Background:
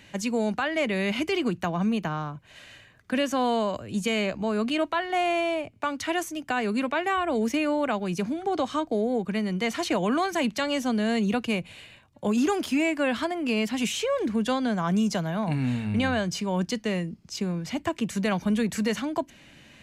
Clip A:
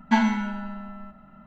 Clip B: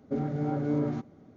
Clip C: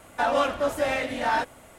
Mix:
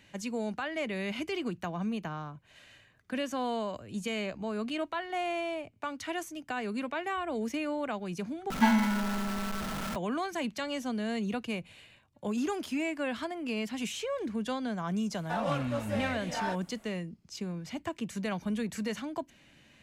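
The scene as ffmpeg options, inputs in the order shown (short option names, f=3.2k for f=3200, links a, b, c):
-filter_complex "[0:a]volume=-8dB[a];[1:a]aeval=exprs='val(0)+0.5*0.0562*sgn(val(0))':c=same[b];[a]asplit=2[c][d];[c]atrim=end=8.504[e];[b]atrim=end=1.46,asetpts=PTS-STARTPTS,volume=-5dB[f];[d]atrim=start=9.956[g];[3:a]atrim=end=1.78,asetpts=PTS-STARTPTS,volume=-10dB,afade=t=in:d=0.004:c=hsin,afade=t=out:st=1.776:d=0.004:c=hsin,adelay=15110[h];[e][f]acrossfade=d=0.004:c1=hsin:c2=hsin[i];[i][g]acrossfade=d=0.004:c1=hsin:c2=hsin[j];[j][h]amix=inputs=2:normalize=0"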